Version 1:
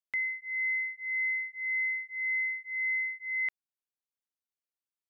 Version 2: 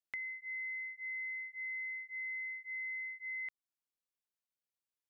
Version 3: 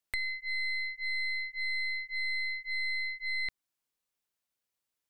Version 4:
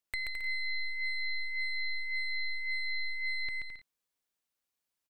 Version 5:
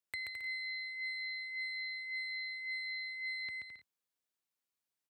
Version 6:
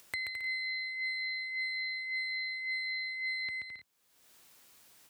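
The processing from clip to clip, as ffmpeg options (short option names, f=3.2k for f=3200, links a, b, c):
-af "acompressor=threshold=-37dB:ratio=6,volume=-3dB"
-af "aeval=exprs='0.0335*(cos(1*acos(clip(val(0)/0.0335,-1,1)))-cos(1*PI/2))+0.00841*(cos(6*acos(clip(val(0)/0.0335,-1,1)))-cos(6*PI/2))+0.00237*(cos(8*acos(clip(val(0)/0.0335,-1,1)))-cos(8*PI/2))':c=same,volume=6.5dB"
-af "aecho=1:1:130|214.5|269.4|305.1|328.3:0.631|0.398|0.251|0.158|0.1,volume=-2.5dB"
-af "highpass=f=74:w=0.5412,highpass=f=74:w=1.3066,volume=-4.5dB"
-af "acompressor=mode=upward:threshold=-44dB:ratio=2.5,volume=4.5dB"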